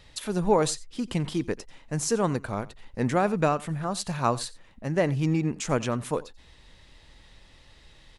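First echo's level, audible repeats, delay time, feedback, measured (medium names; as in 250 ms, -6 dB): -21.0 dB, 1, 89 ms, no regular repeats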